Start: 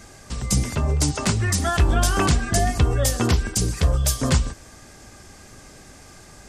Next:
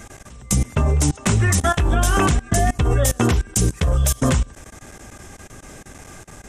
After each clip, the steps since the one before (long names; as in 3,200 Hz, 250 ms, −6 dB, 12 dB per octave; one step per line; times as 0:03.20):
output level in coarse steps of 23 dB
parametric band 4,600 Hz −11 dB 0.37 octaves
level +7 dB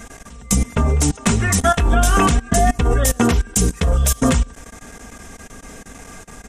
comb filter 4.3 ms, depth 50%
level +1.5 dB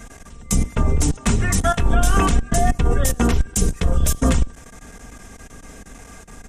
sub-octave generator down 2 octaves, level +2 dB
level −4 dB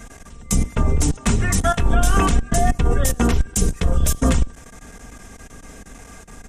no processing that can be heard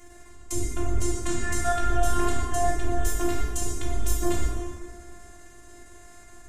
flanger 0.85 Hz, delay 6.6 ms, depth 8.9 ms, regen −85%
phases set to zero 351 Hz
dense smooth reverb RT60 1.9 s, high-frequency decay 0.6×, DRR −3.5 dB
level −4.5 dB